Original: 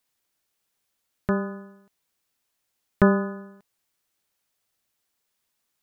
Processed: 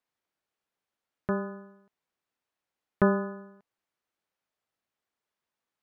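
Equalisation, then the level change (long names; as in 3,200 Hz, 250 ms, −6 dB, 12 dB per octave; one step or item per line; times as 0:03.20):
low-pass filter 1,100 Hz 6 dB per octave
low-shelf EQ 69 Hz −8 dB
low-shelf EQ 490 Hz −5.5 dB
0.0 dB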